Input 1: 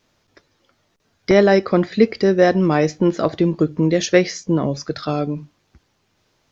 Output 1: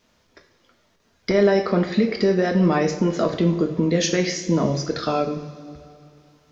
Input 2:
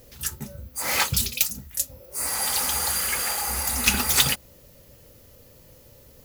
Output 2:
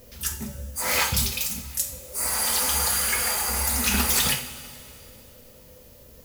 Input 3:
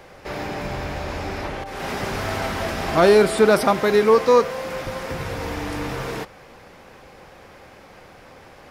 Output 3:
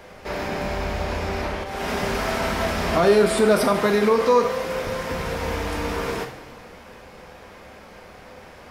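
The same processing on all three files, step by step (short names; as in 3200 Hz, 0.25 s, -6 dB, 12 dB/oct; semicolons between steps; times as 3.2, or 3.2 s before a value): limiter -11.5 dBFS; two-slope reverb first 0.51 s, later 2.8 s, from -15 dB, DRR 3 dB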